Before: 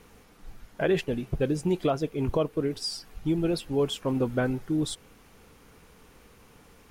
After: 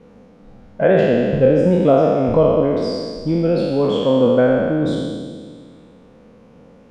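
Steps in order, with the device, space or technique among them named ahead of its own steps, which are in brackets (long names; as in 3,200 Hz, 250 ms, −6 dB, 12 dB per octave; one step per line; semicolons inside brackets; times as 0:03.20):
peak hold with a decay on every bin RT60 2.08 s
dynamic equaliser 1,600 Hz, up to +7 dB, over −40 dBFS, Q 0.73
inside a cardboard box (low-pass filter 5,700 Hz 12 dB per octave; hollow resonant body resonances 210/510 Hz, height 18 dB, ringing for 20 ms)
level −7 dB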